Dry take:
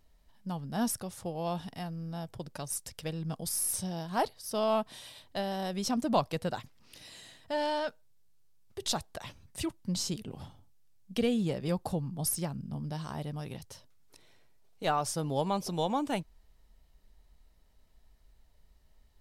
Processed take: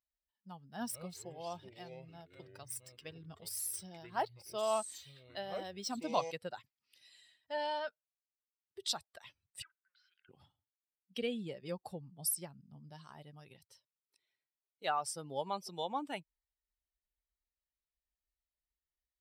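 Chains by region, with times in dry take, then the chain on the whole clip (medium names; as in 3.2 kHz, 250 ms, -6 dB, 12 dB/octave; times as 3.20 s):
0.63–6.31 s: median filter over 3 samples + ever faster or slower copies 168 ms, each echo -5 st, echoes 3, each echo -6 dB
9.62–10.29 s: compression, threshold -41 dBFS + resonant high-pass 1.5 kHz, resonance Q 13 + distance through air 320 m
whole clip: expander on every frequency bin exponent 1.5; high-pass 630 Hz 6 dB/octave; band-stop 6.6 kHz, Q 5.4; trim -1 dB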